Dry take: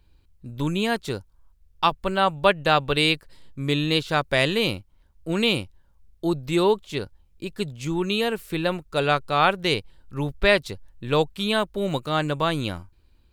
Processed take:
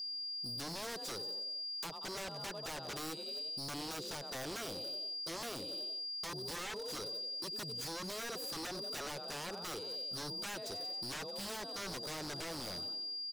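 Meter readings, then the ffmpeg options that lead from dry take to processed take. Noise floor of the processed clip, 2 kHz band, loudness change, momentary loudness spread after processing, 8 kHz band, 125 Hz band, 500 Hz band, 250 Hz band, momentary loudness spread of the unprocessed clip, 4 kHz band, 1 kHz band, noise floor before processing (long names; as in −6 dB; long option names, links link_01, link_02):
−45 dBFS, −19.5 dB, −16.0 dB, 3 LU, −1.5 dB, −22.0 dB, −20.5 dB, −21.0 dB, 13 LU, −9.5 dB, −20.0 dB, −59 dBFS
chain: -filter_complex "[0:a]highpass=140,asplit=6[link_01][link_02][link_03][link_04][link_05][link_06];[link_02]adelay=91,afreqshift=33,volume=-16.5dB[link_07];[link_03]adelay=182,afreqshift=66,volume=-21.2dB[link_08];[link_04]adelay=273,afreqshift=99,volume=-26dB[link_09];[link_05]adelay=364,afreqshift=132,volume=-30.7dB[link_10];[link_06]adelay=455,afreqshift=165,volume=-35.4dB[link_11];[link_01][link_07][link_08][link_09][link_10][link_11]amix=inputs=6:normalize=0,aeval=exprs='val(0)+0.0126*sin(2*PI*4800*n/s)':channel_layout=same,acompressor=threshold=-28dB:ratio=3,aeval=exprs='0.224*(cos(1*acos(clip(val(0)/0.224,-1,1)))-cos(1*PI/2))+0.00891*(cos(7*acos(clip(val(0)/0.224,-1,1)))-cos(7*PI/2))':channel_layout=same,firequalizer=gain_entry='entry(220,0);entry(430,6);entry(2200,-12);entry(4900,8)':delay=0.05:min_phase=1,aeval=exprs='0.0266*(abs(mod(val(0)/0.0266+3,4)-2)-1)':channel_layout=same,volume=-5dB"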